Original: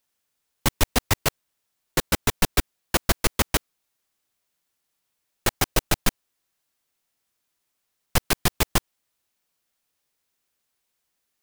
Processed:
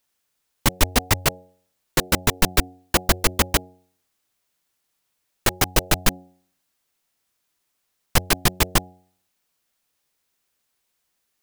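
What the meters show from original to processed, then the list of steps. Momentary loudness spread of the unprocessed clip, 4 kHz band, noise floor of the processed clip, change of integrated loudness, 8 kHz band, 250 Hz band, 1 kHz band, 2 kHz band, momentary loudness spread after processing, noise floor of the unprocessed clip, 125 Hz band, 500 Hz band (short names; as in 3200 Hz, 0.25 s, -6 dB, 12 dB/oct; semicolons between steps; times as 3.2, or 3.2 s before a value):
5 LU, +3.0 dB, -75 dBFS, +3.0 dB, +3.0 dB, +2.5 dB, +3.0 dB, +3.0 dB, 5 LU, -78 dBFS, +2.5 dB, +2.5 dB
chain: de-hum 91.4 Hz, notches 9; gain +3 dB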